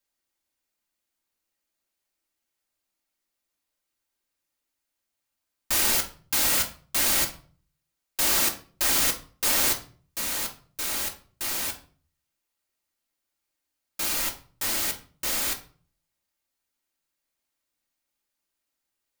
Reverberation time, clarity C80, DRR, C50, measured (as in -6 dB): 0.45 s, 18.0 dB, 1.0 dB, 12.0 dB